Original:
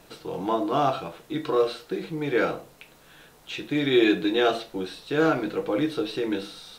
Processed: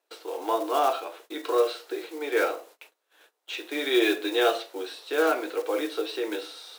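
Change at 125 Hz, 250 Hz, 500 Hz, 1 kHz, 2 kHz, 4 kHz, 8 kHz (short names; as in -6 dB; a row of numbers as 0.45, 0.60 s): under -35 dB, -6.0 dB, -1.0 dB, 0.0 dB, 0.0 dB, 0.0 dB, n/a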